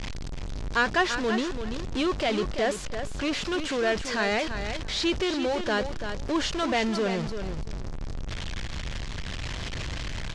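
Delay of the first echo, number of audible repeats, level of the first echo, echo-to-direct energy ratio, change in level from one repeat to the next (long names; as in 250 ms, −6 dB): 337 ms, 2, −8.5 dB, −8.5 dB, −16.0 dB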